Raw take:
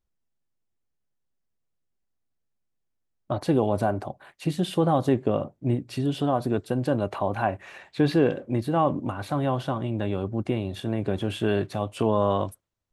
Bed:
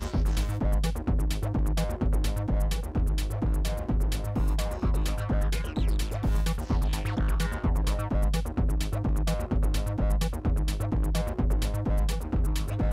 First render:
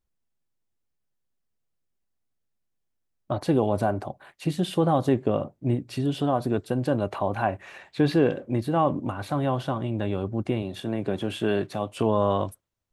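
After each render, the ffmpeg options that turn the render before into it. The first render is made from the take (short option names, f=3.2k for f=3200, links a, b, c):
-filter_complex "[0:a]asettb=1/sr,asplit=3[a][b][c];[a]atrim=end=10.624[d];[b]atrim=start=10.62:end=11.97,asetpts=PTS-STARTPTS,afade=t=in:d=0.004:c=qsin,afade=t=out:st=1.346:d=0.004:c=qsin,highpass=130[e];[c]atrim=start=11.966[f];[d][e]acrossfade=d=0.004:c1=hsin:c2=qsin[g];[g][f]acrossfade=d=0.004:c1=qsin:c2=hsin"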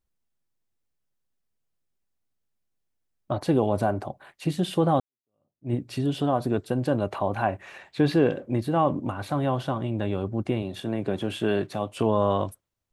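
-filter_complex "[0:a]asplit=2[a][b];[a]atrim=end=5,asetpts=PTS-STARTPTS,afade=t=out:st=4.996:d=0.004:c=hsin[c];[b]atrim=start=5,asetpts=PTS-STARTPTS,afade=t=in:d=0.74:c=exp[d];[c][d]concat=n=2:v=0:a=1"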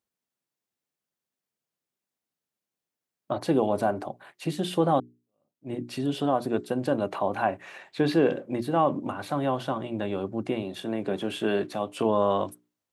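-af "highpass=180,bandreject=f=60:t=h:w=6,bandreject=f=120:t=h:w=6,bandreject=f=180:t=h:w=6,bandreject=f=240:t=h:w=6,bandreject=f=300:t=h:w=6,bandreject=f=360:t=h:w=6,bandreject=f=420:t=h:w=6"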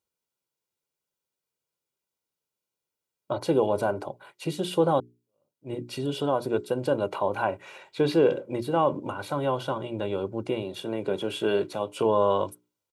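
-af "bandreject=f=1.8k:w=5.6,aecho=1:1:2.1:0.47"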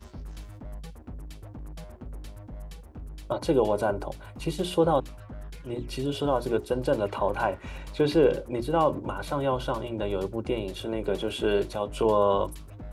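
-filter_complex "[1:a]volume=-14.5dB[a];[0:a][a]amix=inputs=2:normalize=0"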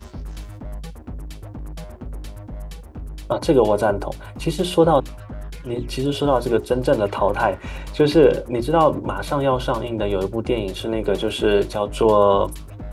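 -af "volume=7.5dB"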